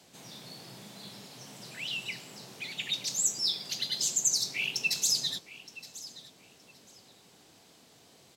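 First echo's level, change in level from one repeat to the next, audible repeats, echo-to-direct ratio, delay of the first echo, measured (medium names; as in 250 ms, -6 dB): -17.0 dB, -14.0 dB, 2, -17.0 dB, 920 ms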